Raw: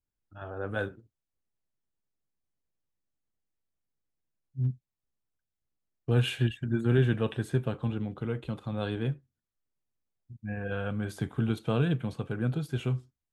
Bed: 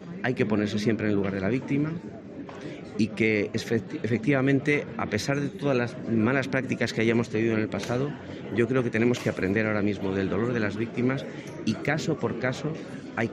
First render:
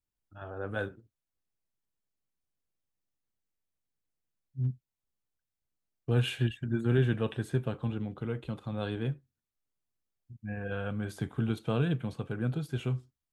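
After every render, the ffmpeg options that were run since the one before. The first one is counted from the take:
-af "volume=-2dB"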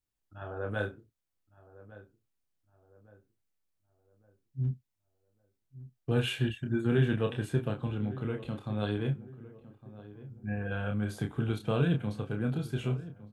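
-filter_complex "[0:a]asplit=2[a][b];[b]adelay=29,volume=-5.5dB[c];[a][c]amix=inputs=2:normalize=0,asplit=2[d][e];[e]adelay=1159,lowpass=f=1.2k:p=1,volume=-16.5dB,asplit=2[f][g];[g]adelay=1159,lowpass=f=1.2k:p=1,volume=0.43,asplit=2[h][i];[i]adelay=1159,lowpass=f=1.2k:p=1,volume=0.43,asplit=2[j][k];[k]adelay=1159,lowpass=f=1.2k:p=1,volume=0.43[l];[d][f][h][j][l]amix=inputs=5:normalize=0"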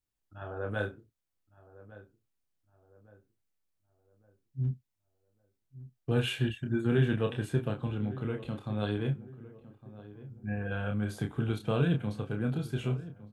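-af anull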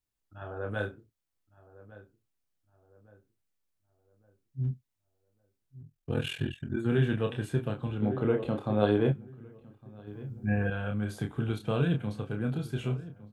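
-filter_complex "[0:a]asettb=1/sr,asplit=3[a][b][c];[a]atrim=end=5.814[d];[b]atrim=start=5.81:end=6.78,asetpts=PTS-STARTPTS,afade=t=in:d=0.004:c=qsin,afade=t=out:st=0.966:d=0.004:c=qsin,aeval=exprs='val(0)*sin(2*PI*21*n/s)':c=same[e];[c]atrim=start=6.776[f];[d][e]acrossfade=d=0.004:c1=hsin:c2=qsin[g];[g][f]acrossfade=d=0.004:c1=qsin:c2=hsin,asettb=1/sr,asplit=3[h][i][j];[h]atrim=end=8.024[k];[i]atrim=start=8.02:end=9.12,asetpts=PTS-STARTPTS,afade=t=in:d=0.004:c=qsin,afade=t=out:st=1.096:d=0.004:c=qsin,equalizer=f=540:t=o:w=2.7:g=11[l];[j]atrim=start=9.116[m];[k][l]acrossfade=d=0.004:c1=hsin:c2=qsin[n];[n][m]acrossfade=d=0.004:c1=qsin:c2=hsin,asplit=3[o][p][q];[o]atrim=end=10.072[r];[p]atrim=start=10.068:end=10.702,asetpts=PTS-STARTPTS,volume=6.5dB[s];[q]atrim=start=10.698[t];[r][s]acrossfade=d=0.004:c1=hsin:c2=hsin[u];[u][t]acrossfade=d=0.004:c1=hsin:c2=hsin"

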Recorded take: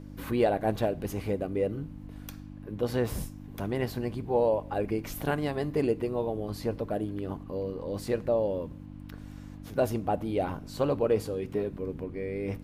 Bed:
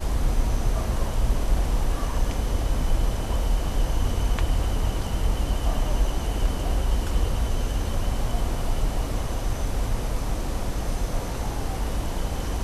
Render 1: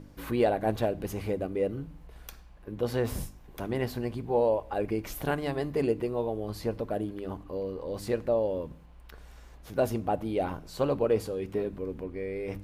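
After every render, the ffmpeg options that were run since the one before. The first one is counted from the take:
-af "bandreject=f=50:t=h:w=4,bandreject=f=100:t=h:w=4,bandreject=f=150:t=h:w=4,bandreject=f=200:t=h:w=4,bandreject=f=250:t=h:w=4,bandreject=f=300:t=h:w=4"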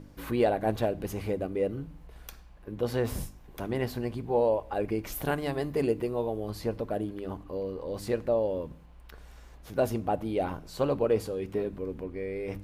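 -filter_complex "[0:a]asettb=1/sr,asplit=3[a][b][c];[a]atrim=end=5.124[d];[b]atrim=start=5.12:end=6.51,asetpts=PTS-STARTPTS,afade=t=in:d=0.004:c=qsin,afade=t=out:st=1.386:d=0.004:c=qsin,highshelf=f=9.2k:g=6[e];[c]atrim=start=6.506[f];[d][e]acrossfade=d=0.004:c1=hsin:c2=qsin[g];[g][f]acrossfade=d=0.004:c1=qsin:c2=hsin"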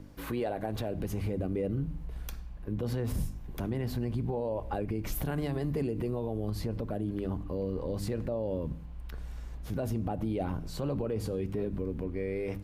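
-filter_complex "[0:a]acrossover=split=250|1500[a][b][c];[a]dynaudnorm=f=280:g=7:m=10dB[d];[d][b][c]amix=inputs=3:normalize=0,alimiter=limit=-23.5dB:level=0:latency=1:release=85"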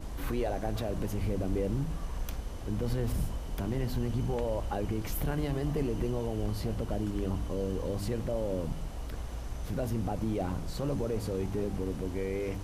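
-filter_complex "[1:a]volume=-14.5dB[a];[0:a][a]amix=inputs=2:normalize=0"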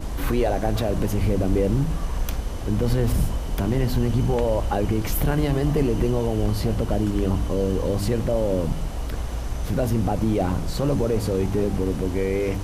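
-af "volume=10dB"

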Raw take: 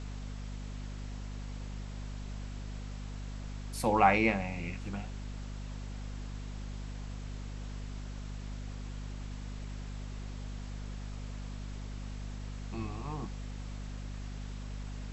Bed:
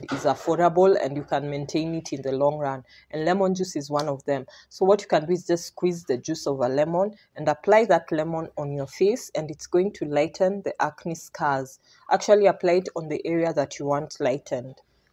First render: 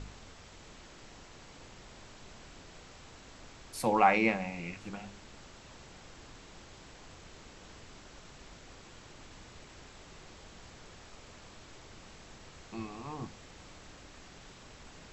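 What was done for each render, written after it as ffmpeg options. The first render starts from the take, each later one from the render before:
-af "bandreject=f=50:t=h:w=4,bandreject=f=100:t=h:w=4,bandreject=f=150:t=h:w=4,bandreject=f=200:t=h:w=4,bandreject=f=250:t=h:w=4"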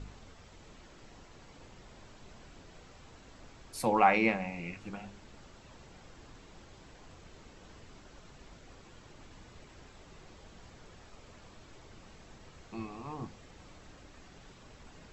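-af "afftdn=nr=6:nf=-54"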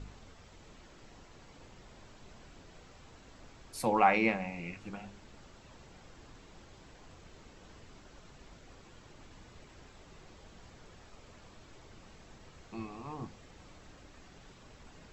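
-af "volume=-1dB"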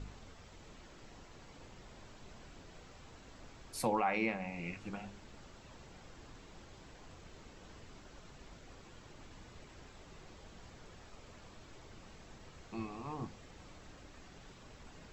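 -af "alimiter=limit=-21.5dB:level=0:latency=1:release=402"

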